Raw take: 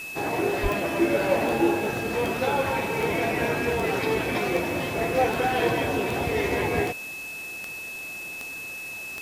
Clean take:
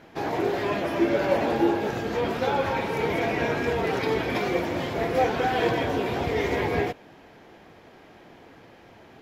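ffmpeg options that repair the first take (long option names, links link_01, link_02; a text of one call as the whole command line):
ffmpeg -i in.wav -filter_complex "[0:a]adeclick=threshold=4,bandreject=frequency=2600:width=30,asplit=3[link_01][link_02][link_03];[link_01]afade=type=out:start_time=0.62:duration=0.02[link_04];[link_02]highpass=frequency=140:width=0.5412,highpass=frequency=140:width=1.3066,afade=type=in:start_time=0.62:duration=0.02,afade=type=out:start_time=0.74:duration=0.02[link_05];[link_03]afade=type=in:start_time=0.74:duration=0.02[link_06];[link_04][link_05][link_06]amix=inputs=3:normalize=0,afwtdn=0.0063" out.wav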